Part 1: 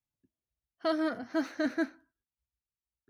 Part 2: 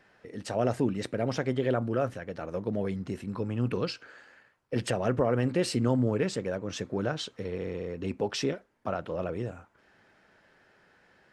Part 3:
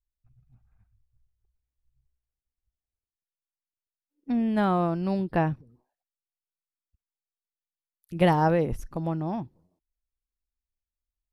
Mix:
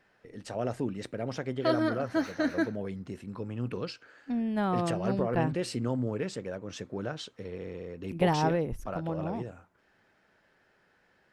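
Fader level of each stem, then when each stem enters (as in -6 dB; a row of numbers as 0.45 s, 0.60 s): +2.0 dB, -5.0 dB, -5.0 dB; 0.80 s, 0.00 s, 0.00 s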